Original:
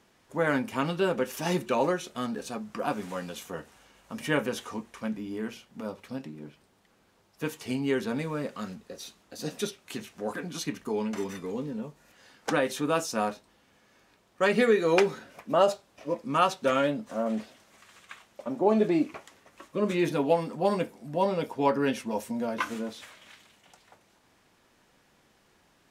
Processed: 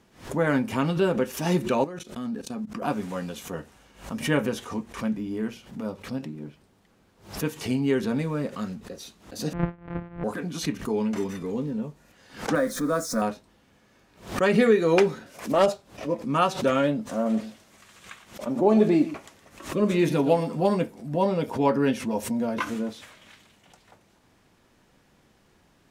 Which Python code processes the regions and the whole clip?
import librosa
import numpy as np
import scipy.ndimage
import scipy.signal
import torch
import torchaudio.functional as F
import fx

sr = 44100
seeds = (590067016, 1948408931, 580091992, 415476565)

y = fx.chain(x, sr, fx.level_steps(step_db=20),
    fx.peak_eq(hz=240.0, db=6.0, octaves=0.41), at=(1.84, 2.82))
y = fx.chain(y, sr, fx.sample_sort(block=256),
    fx.lowpass(hz=2100.0, slope=24), at=(9.53, 10.24))
y = fx.chain(y, sr, fx.zero_step(step_db=-36.5),
    fx.fixed_phaser(hz=560.0, stages=8), at=(12.55, 13.22))
y = fx.chain(y, sr, fx.bass_treble(bass_db=-6, treble_db=10),
    fx.doppler_dist(depth_ms=0.16), at=(15.26, 15.66))
y = fx.chain(y, sr, fx.peak_eq(hz=13000.0, db=4.0, octaves=2.6),
    fx.echo_single(ms=116, db=-14.5), at=(17.01, 20.67))
y = fx.low_shelf(y, sr, hz=330.0, db=8.0)
y = fx.pre_swell(y, sr, db_per_s=140.0)